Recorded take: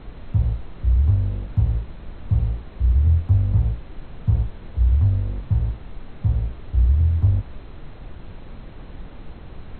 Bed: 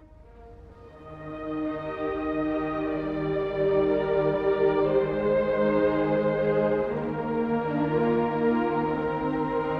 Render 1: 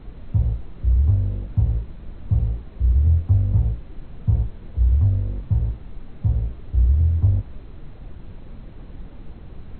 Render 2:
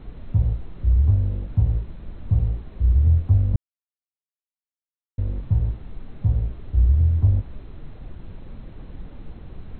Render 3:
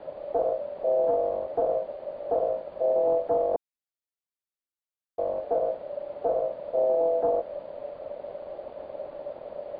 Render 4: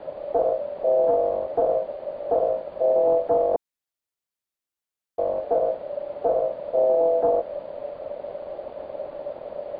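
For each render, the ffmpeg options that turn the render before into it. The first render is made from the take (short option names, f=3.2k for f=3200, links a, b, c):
-af "afftdn=nr=6:nf=-40"
-filter_complex "[0:a]asplit=3[a][b][c];[a]atrim=end=3.56,asetpts=PTS-STARTPTS,afade=t=out:st=3.556:d=0.004:c=hsin[d];[b]atrim=start=3.56:end=5.18,asetpts=PTS-STARTPTS,volume=0[e];[c]atrim=start=5.18,asetpts=PTS-STARTPTS,afade=t=in:d=0.004:c=hsin[f];[d][e][f]concat=n=3:v=0:a=1"
-filter_complex "[0:a]acrossover=split=360[a][b];[a]asoftclip=type=tanh:threshold=-17.5dB[c];[c][b]amix=inputs=2:normalize=0,aeval=exprs='val(0)*sin(2*PI*580*n/s)':c=same"
-af "volume=4dB"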